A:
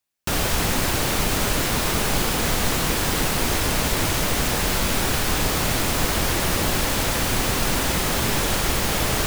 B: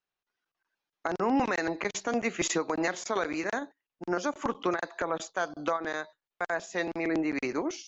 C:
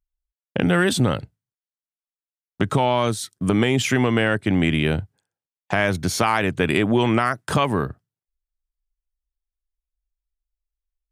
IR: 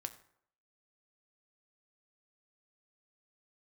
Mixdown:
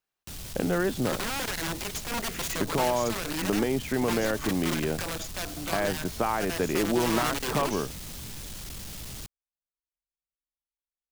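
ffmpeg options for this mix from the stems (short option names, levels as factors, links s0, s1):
-filter_complex "[0:a]acrossover=split=240|3000[s0][s1][s2];[s1]acompressor=threshold=0.00794:ratio=2.5[s3];[s0][s3][s2]amix=inputs=3:normalize=0,asoftclip=type=tanh:threshold=0.0596,volume=0.282[s4];[1:a]alimiter=limit=0.0841:level=0:latency=1:release=45,aeval=exprs='(mod(22.4*val(0)+1,2)-1)/22.4':c=same,volume=1.12[s5];[2:a]bandpass=f=500:t=q:w=0.62:csg=0,volume=0.562[s6];[s4][s5][s6]amix=inputs=3:normalize=0"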